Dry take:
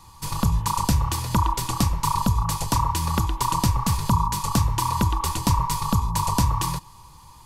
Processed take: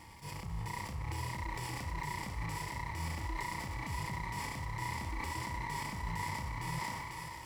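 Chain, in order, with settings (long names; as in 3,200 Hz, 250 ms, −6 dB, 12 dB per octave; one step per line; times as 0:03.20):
lower of the sound and its delayed copy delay 0.39 ms
brickwall limiter −18 dBFS, peak gain reduction 8 dB
reversed playback
downward compressor 4 to 1, threshold −35 dBFS, peak gain reduction 11.5 dB
reversed playback
high-pass filter 43 Hz
bass and treble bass −15 dB, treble 0 dB
transient designer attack −5 dB, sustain −9 dB
on a send: feedback echo with a high-pass in the loop 495 ms, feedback 57%, high-pass 380 Hz, level −3 dB
on the sum: harmonic and percussive parts rebalanced percussive −15 dB
spectral tilt −2.5 dB per octave
surface crackle 540 per second −63 dBFS
level that may fall only so fast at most 23 dB per second
level +5.5 dB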